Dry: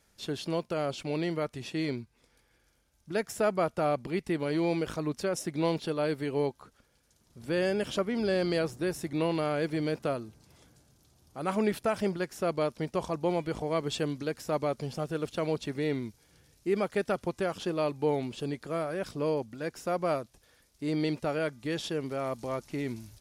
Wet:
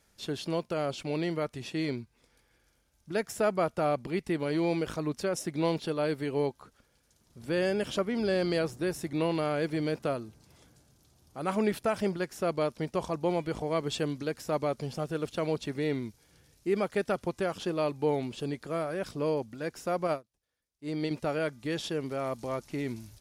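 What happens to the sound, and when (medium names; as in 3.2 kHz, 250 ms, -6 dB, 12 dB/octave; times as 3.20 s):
20.07–21.11 s: upward expansion 2.5:1, over -41 dBFS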